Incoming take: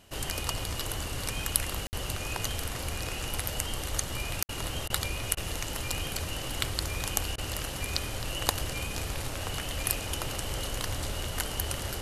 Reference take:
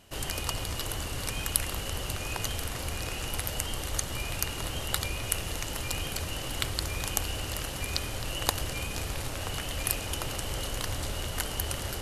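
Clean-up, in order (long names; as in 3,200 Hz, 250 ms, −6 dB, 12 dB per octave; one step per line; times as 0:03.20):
repair the gap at 0:01.87/0:04.43, 59 ms
repair the gap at 0:04.47/0:04.88/0:05.35/0:07.36, 19 ms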